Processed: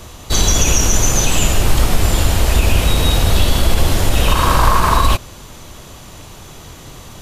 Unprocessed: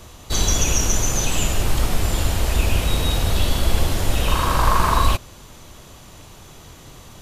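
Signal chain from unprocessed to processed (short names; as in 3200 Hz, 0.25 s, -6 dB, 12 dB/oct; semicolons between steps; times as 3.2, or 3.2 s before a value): maximiser +7.5 dB; gain -1 dB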